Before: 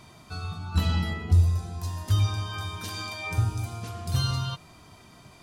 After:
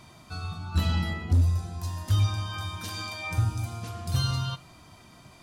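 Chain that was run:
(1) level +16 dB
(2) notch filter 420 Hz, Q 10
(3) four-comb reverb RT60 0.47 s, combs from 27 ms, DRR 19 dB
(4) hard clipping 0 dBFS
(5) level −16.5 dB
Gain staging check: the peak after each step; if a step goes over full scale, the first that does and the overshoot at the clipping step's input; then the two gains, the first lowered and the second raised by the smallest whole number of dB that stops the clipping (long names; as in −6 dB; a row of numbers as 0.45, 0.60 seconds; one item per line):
+5.0, +5.0, +5.0, 0.0, −16.5 dBFS
step 1, 5.0 dB
step 1 +11 dB, step 5 −11.5 dB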